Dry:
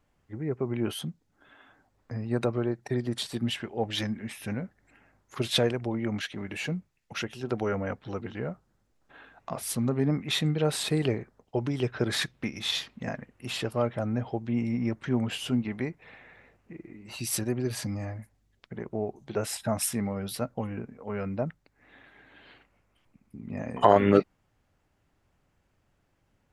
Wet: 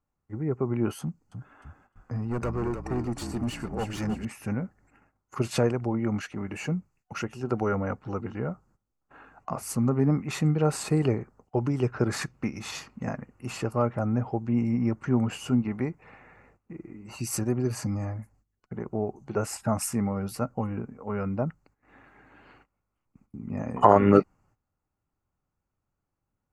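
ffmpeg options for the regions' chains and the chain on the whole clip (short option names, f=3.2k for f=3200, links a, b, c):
-filter_complex "[0:a]asettb=1/sr,asplit=3[a][b][c];[a]atrim=end=1.014[d];[b]atrim=start=1.01:end=4.25,asetpts=PTS-STARTPTS,afade=t=in:d=0.004:c=qsin,afade=t=out:st=3.236:d=0.004:c=qsin,asoftclip=type=hard:threshold=-28dB,asplit=6[e][f][g][h][i][j];[f]adelay=305,afreqshift=-42,volume=-8dB[k];[g]adelay=610,afreqshift=-84,volume=-14.7dB[l];[h]adelay=915,afreqshift=-126,volume=-21.5dB[m];[i]adelay=1220,afreqshift=-168,volume=-28.2dB[n];[j]adelay=1525,afreqshift=-210,volume=-35dB[o];[e][k][l][m][n][o]amix=inputs=6:normalize=0,atrim=end_sample=142884[p];[c]atrim=start=4.246[q];[d][p]acrossfade=d=0.004:c1=hsin:c2=qsin[r];[r][q]acrossfade=d=0.004:c1=qsin:c2=hsin,tiltshelf=f=640:g=4,agate=range=-15dB:threshold=-59dB:ratio=16:detection=peak,superequalizer=9b=1.78:10b=2.24:13b=0.282:15b=1.78"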